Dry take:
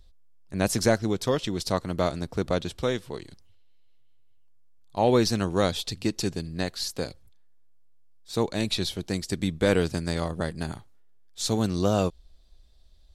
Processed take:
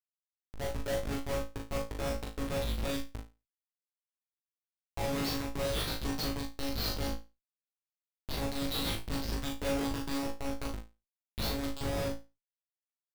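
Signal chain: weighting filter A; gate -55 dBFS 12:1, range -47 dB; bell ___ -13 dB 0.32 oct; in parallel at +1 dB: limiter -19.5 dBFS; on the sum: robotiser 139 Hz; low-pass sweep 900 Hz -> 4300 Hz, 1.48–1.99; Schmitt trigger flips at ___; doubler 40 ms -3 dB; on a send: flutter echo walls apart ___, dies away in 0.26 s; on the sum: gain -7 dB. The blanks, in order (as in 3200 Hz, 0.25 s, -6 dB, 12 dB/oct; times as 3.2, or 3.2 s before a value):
2400 Hz, -26.5 dBFS, 3.1 m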